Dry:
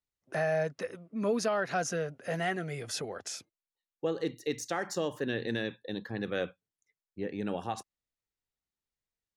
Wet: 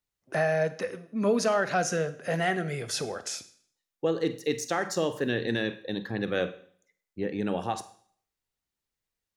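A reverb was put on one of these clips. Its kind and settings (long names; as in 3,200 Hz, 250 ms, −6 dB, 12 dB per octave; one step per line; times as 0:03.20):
four-comb reverb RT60 0.56 s, combs from 33 ms, DRR 12.5 dB
level +4.5 dB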